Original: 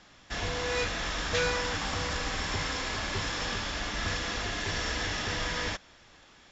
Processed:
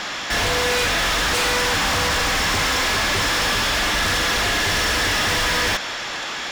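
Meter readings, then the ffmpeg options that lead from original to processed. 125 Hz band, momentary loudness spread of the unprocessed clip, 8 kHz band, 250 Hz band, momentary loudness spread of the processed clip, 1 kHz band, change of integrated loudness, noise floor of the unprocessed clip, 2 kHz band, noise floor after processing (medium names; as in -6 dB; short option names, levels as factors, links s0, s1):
+7.5 dB, 4 LU, no reading, +9.5 dB, 3 LU, +13.0 dB, +12.5 dB, -57 dBFS, +13.0 dB, -29 dBFS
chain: -filter_complex "[0:a]aeval=exprs='0.178*sin(PI/2*4.47*val(0)/0.178)':c=same,asplit=2[s0][s1];[s1]highpass=f=720:p=1,volume=15.8,asoftclip=type=tanh:threshold=0.188[s2];[s0][s2]amix=inputs=2:normalize=0,lowpass=f=6200:p=1,volume=0.501,volume=0.794"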